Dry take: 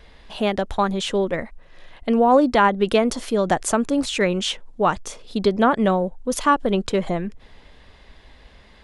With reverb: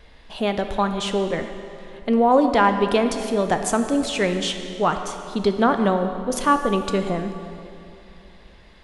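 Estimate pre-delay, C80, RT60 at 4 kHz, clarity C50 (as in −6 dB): 11 ms, 8.5 dB, 2.2 s, 8.0 dB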